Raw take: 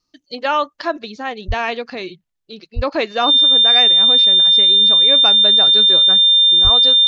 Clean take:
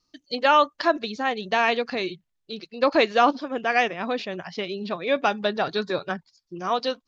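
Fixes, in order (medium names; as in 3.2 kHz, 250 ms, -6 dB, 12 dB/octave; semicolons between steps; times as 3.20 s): band-stop 3.6 kHz, Q 30; de-plosive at 1.47/2.75/6.63 s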